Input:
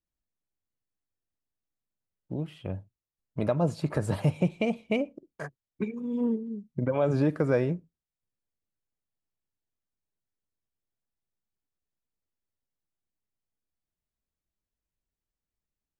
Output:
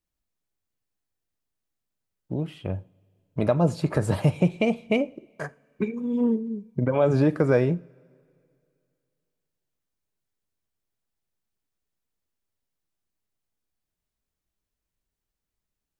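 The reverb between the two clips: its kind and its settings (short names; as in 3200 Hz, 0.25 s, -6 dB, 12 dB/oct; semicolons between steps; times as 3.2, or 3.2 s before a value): two-slope reverb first 0.34 s, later 2.5 s, from -22 dB, DRR 15.5 dB; gain +4.5 dB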